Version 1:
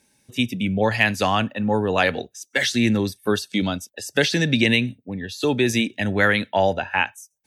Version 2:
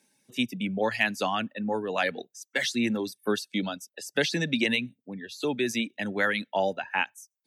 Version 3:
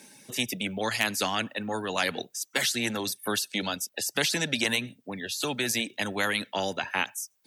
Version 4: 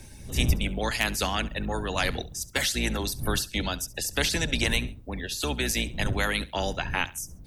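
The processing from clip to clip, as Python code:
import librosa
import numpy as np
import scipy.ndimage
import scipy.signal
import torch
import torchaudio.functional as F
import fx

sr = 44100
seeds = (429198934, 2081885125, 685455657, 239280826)

y1 = scipy.signal.sosfilt(scipy.signal.butter(4, 150.0, 'highpass', fs=sr, output='sos'), x)
y1 = fx.dereverb_blind(y1, sr, rt60_s=0.58)
y1 = fx.rider(y1, sr, range_db=4, speed_s=2.0)
y1 = F.gain(torch.from_numpy(y1), -7.0).numpy()
y2 = fx.spectral_comp(y1, sr, ratio=2.0)
y3 = fx.octave_divider(y2, sr, octaves=2, level_db=3.0)
y3 = fx.dmg_wind(y3, sr, seeds[0], corner_hz=100.0, level_db=-35.0)
y3 = fx.echo_feedback(y3, sr, ms=68, feedback_pct=27, wet_db=-19)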